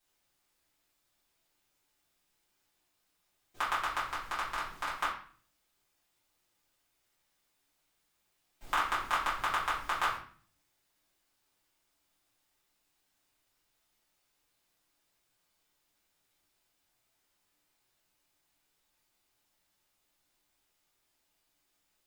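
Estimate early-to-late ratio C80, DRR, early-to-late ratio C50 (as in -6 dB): 9.5 dB, -11.0 dB, 5.5 dB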